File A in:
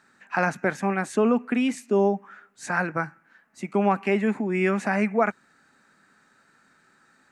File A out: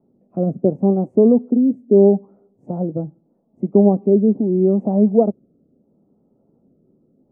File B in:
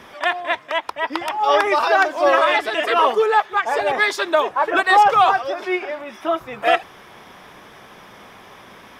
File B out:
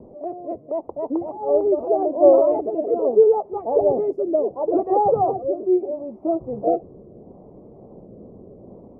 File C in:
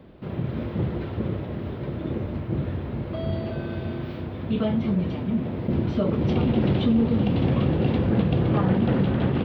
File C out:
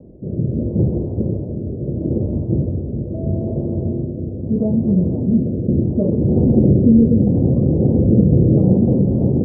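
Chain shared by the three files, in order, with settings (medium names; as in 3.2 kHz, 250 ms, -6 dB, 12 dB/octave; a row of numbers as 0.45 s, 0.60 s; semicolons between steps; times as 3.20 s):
inverse Chebyshev low-pass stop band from 1.5 kHz, stop band 50 dB; rotary cabinet horn 0.75 Hz; peak normalisation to -2 dBFS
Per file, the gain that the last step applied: +11.5 dB, +8.0 dB, +9.5 dB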